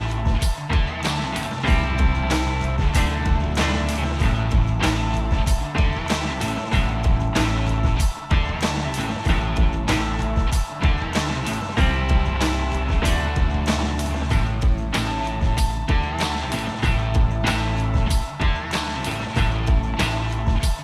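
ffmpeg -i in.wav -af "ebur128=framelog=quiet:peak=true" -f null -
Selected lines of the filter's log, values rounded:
Integrated loudness:
  I:         -22.1 LUFS
  Threshold: -32.1 LUFS
Loudness range:
  LRA:         1.2 LU
  Threshold: -42.0 LUFS
  LRA low:   -22.6 LUFS
  LRA high:  -21.4 LUFS
True peak:
  Peak:       -6.8 dBFS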